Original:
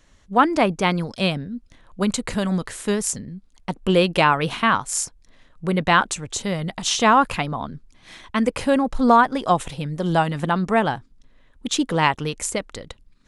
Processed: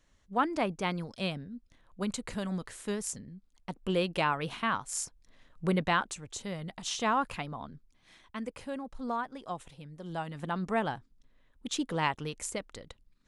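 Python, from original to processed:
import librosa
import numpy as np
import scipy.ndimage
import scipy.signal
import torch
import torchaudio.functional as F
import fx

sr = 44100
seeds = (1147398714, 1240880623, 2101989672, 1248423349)

y = fx.gain(x, sr, db=fx.line((4.8, -12.0), (5.67, -5.0), (6.02, -13.0), (7.71, -13.0), (8.7, -19.5), (10.04, -19.5), (10.64, -11.0)))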